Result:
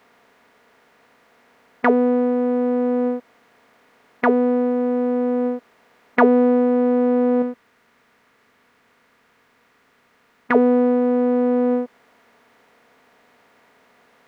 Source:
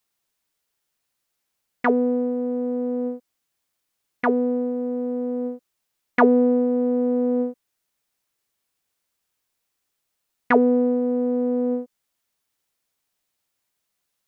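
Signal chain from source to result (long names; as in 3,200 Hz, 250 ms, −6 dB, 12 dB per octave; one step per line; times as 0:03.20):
compressor on every frequency bin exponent 0.6
0:07.42–0:10.55: drawn EQ curve 120 Hz 0 dB, 720 Hz −7 dB, 1,200 Hz −2 dB
level +1 dB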